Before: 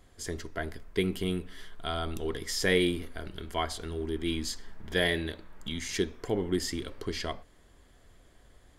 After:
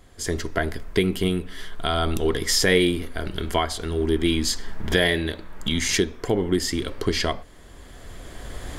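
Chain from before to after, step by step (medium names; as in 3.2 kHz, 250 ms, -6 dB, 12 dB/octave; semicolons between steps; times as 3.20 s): recorder AGC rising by 11 dB/s; trim +6.5 dB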